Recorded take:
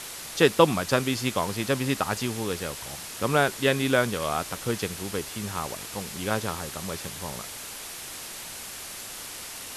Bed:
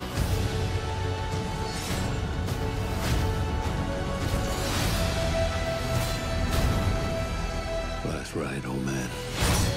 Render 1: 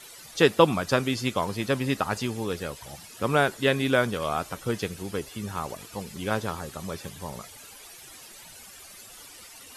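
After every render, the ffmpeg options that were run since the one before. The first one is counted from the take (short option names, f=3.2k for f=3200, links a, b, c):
-af "afftdn=nr=13:nf=-39"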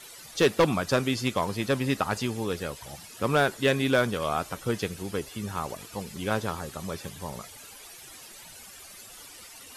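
-af "volume=15dB,asoftclip=hard,volume=-15dB"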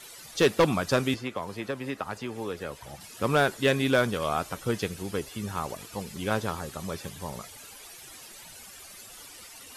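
-filter_complex "[0:a]asettb=1/sr,asplit=3[a][b][c];[a]atrim=end=1.144[d];[b]atrim=start=1.14:end=3.01,asetpts=PTS-STARTPTS,afade=t=in:d=0.004:c=qsin,afade=t=out:st=1.866:d=0.004:c=qsin,acrossover=split=290|2600[e][f][g];[e]acompressor=threshold=-42dB:ratio=4[h];[f]acompressor=threshold=-31dB:ratio=4[i];[g]acompressor=threshold=-51dB:ratio=4[j];[h][i][j]amix=inputs=3:normalize=0[k];[c]atrim=start=3.006[l];[d][k]acrossfade=d=0.004:c1=hsin:c2=qsin[m];[m][l]acrossfade=d=0.004:c1=qsin:c2=hsin"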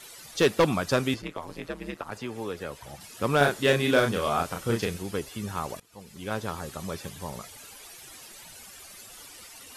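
-filter_complex "[0:a]asplit=3[a][b][c];[a]afade=t=out:st=1.21:d=0.02[d];[b]aeval=exprs='val(0)*sin(2*PI*79*n/s)':c=same,afade=t=in:st=1.21:d=0.02,afade=t=out:st=2.1:d=0.02[e];[c]afade=t=in:st=2.1:d=0.02[f];[d][e][f]amix=inputs=3:normalize=0,asettb=1/sr,asplit=3[g][h][i];[g]atrim=end=3.374[j];[h]atrim=start=3.37:end=4.98,asetpts=PTS-STARTPTS,afade=t=in:d=0.004:c=qsin,afade=t=out:st=1.606:d=0.004:c=qsin,asplit=2[k][l];[l]adelay=35,volume=-3dB[m];[k][m]amix=inputs=2:normalize=0,atrim=end_sample=71001[n];[i]atrim=start=4.976[o];[j][n]acrossfade=d=0.004:c1=hsin:c2=qsin[p];[p][o]acrossfade=d=0.004:c1=qsin:c2=hsin,asplit=2[q][r];[q]atrim=end=5.8,asetpts=PTS-STARTPTS,afade=t=out:st=5.796:d=0.004:c=hsin:silence=0.0749894[s];[r]atrim=start=5.8,asetpts=PTS-STARTPTS,afade=t=in:d=0.87:silence=0.0749894[t];[s][t]concat=n=2:v=0:a=1"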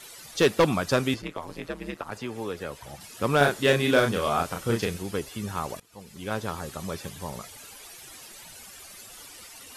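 -af "volume=1dB"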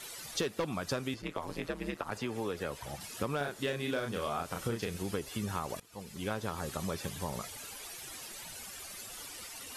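-af "acompressor=threshold=-31dB:ratio=10"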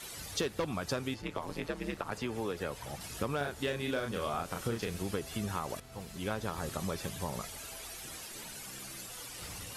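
-filter_complex "[1:a]volume=-24.5dB[a];[0:a][a]amix=inputs=2:normalize=0"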